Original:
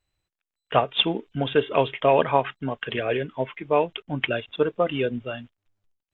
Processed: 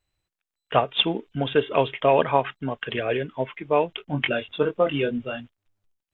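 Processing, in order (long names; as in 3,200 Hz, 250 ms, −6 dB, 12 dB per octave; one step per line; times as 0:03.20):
0:03.96–0:05.40: double-tracking delay 21 ms −5 dB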